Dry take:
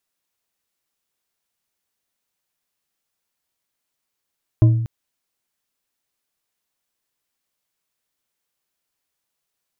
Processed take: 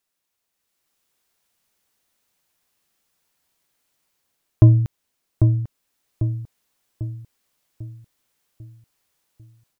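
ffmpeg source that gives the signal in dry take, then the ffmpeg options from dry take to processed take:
-f lavfi -i "aevalsrc='0.473*pow(10,-3*t/0.85)*sin(2*PI*115*t)+0.15*pow(10,-3*t/0.418)*sin(2*PI*317.1*t)+0.0473*pow(10,-3*t/0.261)*sin(2*PI*621.5*t)+0.015*pow(10,-3*t/0.184)*sin(2*PI*1027.3*t)':duration=0.24:sample_rate=44100"
-filter_complex "[0:a]dynaudnorm=framelen=510:gausssize=3:maxgain=7.5dB,asplit=2[link_01][link_02];[link_02]adelay=796,lowpass=frequency=890:poles=1,volume=-5dB,asplit=2[link_03][link_04];[link_04]adelay=796,lowpass=frequency=890:poles=1,volume=0.48,asplit=2[link_05][link_06];[link_06]adelay=796,lowpass=frequency=890:poles=1,volume=0.48,asplit=2[link_07][link_08];[link_08]adelay=796,lowpass=frequency=890:poles=1,volume=0.48,asplit=2[link_09][link_10];[link_10]adelay=796,lowpass=frequency=890:poles=1,volume=0.48,asplit=2[link_11][link_12];[link_12]adelay=796,lowpass=frequency=890:poles=1,volume=0.48[link_13];[link_01][link_03][link_05][link_07][link_09][link_11][link_13]amix=inputs=7:normalize=0"

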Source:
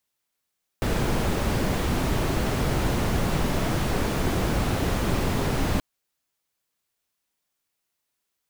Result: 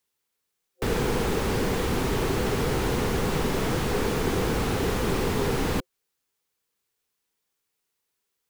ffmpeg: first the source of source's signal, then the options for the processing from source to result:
-f lavfi -i "anoisesrc=color=brown:amplitude=0.313:duration=4.98:sample_rate=44100:seed=1"
-filter_complex "[0:a]superequalizer=7b=1.78:8b=0.631,acrossover=split=180|580|4000[link_01][link_02][link_03][link_04];[link_01]asoftclip=type=tanh:threshold=-25.5dB[link_05];[link_05][link_02][link_03][link_04]amix=inputs=4:normalize=0"

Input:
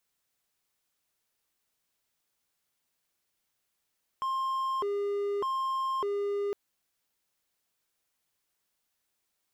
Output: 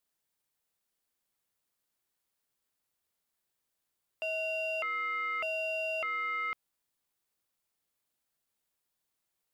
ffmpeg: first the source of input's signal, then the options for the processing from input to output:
-f lavfi -i "aevalsrc='0.0501*(1-4*abs(mod((732.5*t+327.5/0.83*(0.5-abs(mod(0.83*t,1)-0.5)))+0.25,1)-0.5))':duration=2.31:sample_rate=44100"
-af "equalizer=frequency=4200:width_type=o:width=0.49:gain=-11.5,aeval=exprs='val(0)*sin(2*PI*1700*n/s)':channel_layout=same"

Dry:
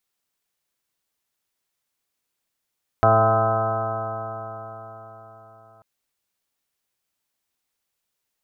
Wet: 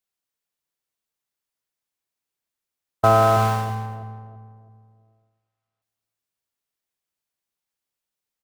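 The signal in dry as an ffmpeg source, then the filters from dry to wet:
-f lavfi -i "aevalsrc='0.1*pow(10,-3*t/4.41)*sin(2*PI*109.07*t)+0.0335*pow(10,-3*t/4.41)*sin(2*PI*218.52*t)+0.0282*pow(10,-3*t/4.41)*sin(2*PI*328.76*t)+0.0473*pow(10,-3*t/4.41)*sin(2*PI*440.17*t)+0.0398*pow(10,-3*t/4.41)*sin(2*PI*553.11*t)+0.168*pow(10,-3*t/4.41)*sin(2*PI*667.98*t)+0.1*pow(10,-3*t/4.41)*sin(2*PI*785.11*t)+0.015*pow(10,-3*t/4.41)*sin(2*PI*904.87*t)+0.0631*pow(10,-3*t/4.41)*sin(2*PI*1027.57*t)+0.02*pow(10,-3*t/4.41)*sin(2*PI*1153.55*t)+0.112*pow(10,-3*t/4.41)*sin(2*PI*1283.1*t)+0.0178*pow(10,-3*t/4.41)*sin(2*PI*1416.51*t)+0.02*pow(10,-3*t/4.41)*sin(2*PI*1554.06*t)':duration=2.79:sample_rate=44100"
-filter_complex "[0:a]aeval=exprs='val(0)+0.5*0.075*sgn(val(0))':channel_layout=same,agate=range=-58dB:threshold=-18dB:ratio=16:detection=peak,asplit=2[link_01][link_02];[link_02]adelay=330,lowpass=frequency=940:poles=1,volume=-8dB,asplit=2[link_03][link_04];[link_04]adelay=330,lowpass=frequency=940:poles=1,volume=0.43,asplit=2[link_05][link_06];[link_06]adelay=330,lowpass=frequency=940:poles=1,volume=0.43,asplit=2[link_07][link_08];[link_08]adelay=330,lowpass=frequency=940:poles=1,volume=0.43,asplit=2[link_09][link_10];[link_10]adelay=330,lowpass=frequency=940:poles=1,volume=0.43[link_11];[link_03][link_05][link_07][link_09][link_11]amix=inputs=5:normalize=0[link_12];[link_01][link_12]amix=inputs=2:normalize=0"

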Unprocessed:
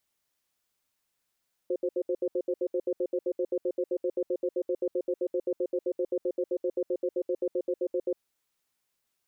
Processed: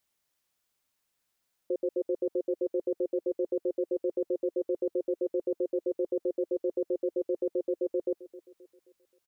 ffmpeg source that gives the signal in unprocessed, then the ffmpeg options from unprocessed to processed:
-f lavfi -i "aevalsrc='0.0398*(sin(2*PI*364*t)+sin(2*PI*524*t))*clip(min(mod(t,0.13),0.06-mod(t,0.13))/0.005,0,1)':duration=6.45:sample_rate=44100"
-af "aecho=1:1:264|528|792|1056:0.126|0.0567|0.0255|0.0115"

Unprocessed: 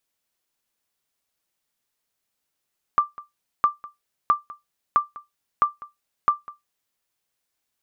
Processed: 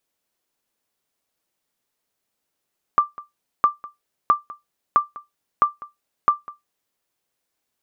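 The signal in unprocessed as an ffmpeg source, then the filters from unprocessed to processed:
-f lavfi -i "aevalsrc='0.355*(sin(2*PI*1180*mod(t,0.66))*exp(-6.91*mod(t,0.66)/0.17)+0.0944*sin(2*PI*1180*max(mod(t,0.66)-0.2,0))*exp(-6.91*max(mod(t,0.66)-0.2,0)/0.17))':duration=3.96:sample_rate=44100"
-af "equalizer=frequency=390:width=0.44:gain=5.5"

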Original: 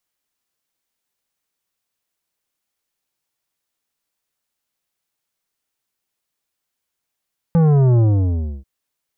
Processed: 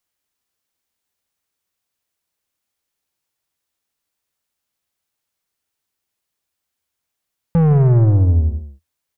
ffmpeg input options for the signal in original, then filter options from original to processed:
-f lavfi -i "aevalsrc='0.266*clip((1.09-t)/0.65,0,1)*tanh(3.55*sin(2*PI*170*1.09/log(65/170)*(exp(log(65/170)*t/1.09)-1)))/tanh(3.55)':duration=1.09:sample_rate=44100"
-filter_complex "[0:a]aeval=exprs='0.282*(cos(1*acos(clip(val(0)/0.282,-1,1)))-cos(1*PI/2))+0.0158*(cos(4*acos(clip(val(0)/0.282,-1,1)))-cos(4*PI/2))':channel_layout=same,equalizer=frequency=81:width_type=o:width=0.44:gain=7.5,asplit=2[link_01][link_02];[link_02]aecho=0:1:159:0.251[link_03];[link_01][link_03]amix=inputs=2:normalize=0"

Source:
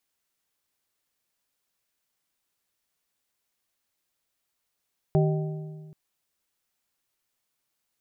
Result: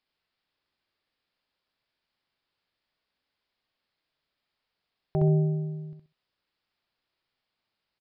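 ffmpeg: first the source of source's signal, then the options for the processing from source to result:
-f lavfi -i "aevalsrc='0.126*pow(10,-3*t/1.76)*sin(2*PI*155*t)+0.075*pow(10,-3*t/1.337)*sin(2*PI*387.5*t)+0.0447*pow(10,-3*t/1.161)*sin(2*PI*620*t)+0.0266*pow(10,-3*t/1.086)*sin(2*PI*775*t)':duration=0.78:sample_rate=44100"
-filter_complex "[0:a]alimiter=limit=-17.5dB:level=0:latency=1:release=156,asplit=2[link_01][link_02];[link_02]aecho=0:1:65|130|195:0.708|0.156|0.0343[link_03];[link_01][link_03]amix=inputs=2:normalize=0,aresample=11025,aresample=44100"

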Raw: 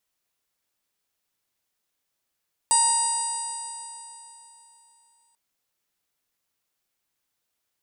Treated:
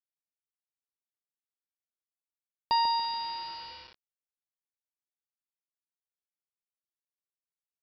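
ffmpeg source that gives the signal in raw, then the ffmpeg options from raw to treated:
-f lavfi -i "aevalsrc='0.0891*pow(10,-3*t/3.25)*sin(2*PI*927.34*t)+0.01*pow(10,-3*t/3.25)*sin(2*PI*1862.71*t)+0.0126*pow(10,-3*t/3.25)*sin(2*PI*2814.02*t)+0.0119*pow(10,-3*t/3.25)*sin(2*PI*3788.96*t)+0.0355*pow(10,-3*t/3.25)*sin(2*PI*4794.9*t)+0.0119*pow(10,-3*t/3.25)*sin(2*PI*5838.82*t)+0.0211*pow(10,-3*t/3.25)*sin(2*PI*6927.25*t)+0.126*pow(10,-3*t/3.25)*sin(2*PI*8066.22*t)+0.0708*pow(10,-3*t/3.25)*sin(2*PI*9261.25*t)':duration=2.64:sample_rate=44100"
-filter_complex "[0:a]asplit=2[link_01][link_02];[link_02]adelay=143,lowpass=frequency=1200:poles=1,volume=-4.5dB,asplit=2[link_03][link_04];[link_04]adelay=143,lowpass=frequency=1200:poles=1,volume=0.41,asplit=2[link_05][link_06];[link_06]adelay=143,lowpass=frequency=1200:poles=1,volume=0.41,asplit=2[link_07][link_08];[link_08]adelay=143,lowpass=frequency=1200:poles=1,volume=0.41,asplit=2[link_09][link_10];[link_10]adelay=143,lowpass=frequency=1200:poles=1,volume=0.41[link_11];[link_01][link_03][link_05][link_07][link_09][link_11]amix=inputs=6:normalize=0,aresample=11025,aeval=exprs='val(0)*gte(abs(val(0)),0.00841)':channel_layout=same,aresample=44100"

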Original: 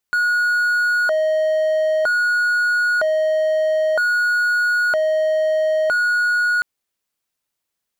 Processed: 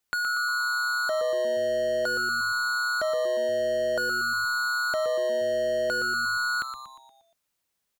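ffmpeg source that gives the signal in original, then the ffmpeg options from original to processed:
-f lavfi -i "aevalsrc='0.224*(1-4*abs(mod((1038*t+412/0.52*(0.5-abs(mod(0.52*t,1)-0.5)))+0.25,1)-0.5))':duration=6.49:sample_rate=44100"
-filter_complex "[0:a]acrossover=split=390|3000[link_01][link_02][link_03];[link_02]acompressor=threshold=-35dB:ratio=2.5[link_04];[link_01][link_04][link_03]amix=inputs=3:normalize=0,asplit=2[link_05][link_06];[link_06]asplit=6[link_07][link_08][link_09][link_10][link_11][link_12];[link_07]adelay=118,afreqshift=-130,volume=-9dB[link_13];[link_08]adelay=236,afreqshift=-260,volume=-15dB[link_14];[link_09]adelay=354,afreqshift=-390,volume=-21dB[link_15];[link_10]adelay=472,afreqshift=-520,volume=-27.1dB[link_16];[link_11]adelay=590,afreqshift=-650,volume=-33.1dB[link_17];[link_12]adelay=708,afreqshift=-780,volume=-39.1dB[link_18];[link_13][link_14][link_15][link_16][link_17][link_18]amix=inputs=6:normalize=0[link_19];[link_05][link_19]amix=inputs=2:normalize=0"

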